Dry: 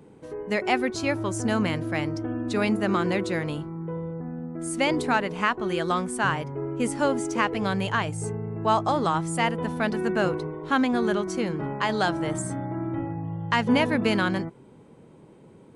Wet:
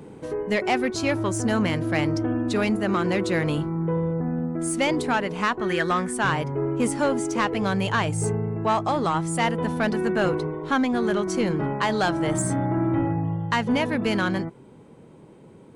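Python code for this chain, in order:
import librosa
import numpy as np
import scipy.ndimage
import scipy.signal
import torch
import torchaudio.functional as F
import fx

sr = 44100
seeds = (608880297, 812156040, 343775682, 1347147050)

y = fx.peak_eq(x, sr, hz=1800.0, db=12.5, octaves=0.49, at=(5.6, 6.13))
y = fx.rider(y, sr, range_db=5, speed_s=0.5)
y = 10.0 ** (-17.5 / 20.0) * np.tanh(y / 10.0 ** (-17.5 / 20.0))
y = y * 10.0 ** (3.5 / 20.0)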